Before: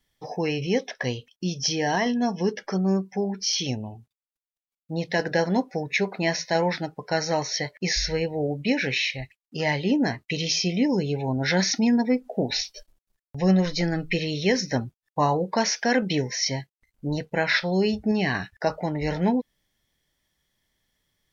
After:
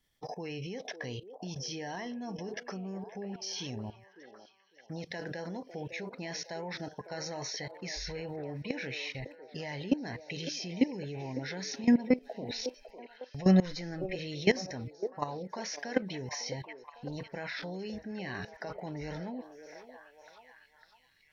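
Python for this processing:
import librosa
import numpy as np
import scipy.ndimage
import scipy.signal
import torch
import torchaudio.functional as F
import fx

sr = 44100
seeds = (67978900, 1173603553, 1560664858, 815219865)

y = fx.level_steps(x, sr, step_db=19)
y = fx.echo_stepped(y, sr, ms=553, hz=470.0, octaves=0.7, feedback_pct=70, wet_db=-7.0)
y = y * 10.0 ** (-1.0 / 20.0)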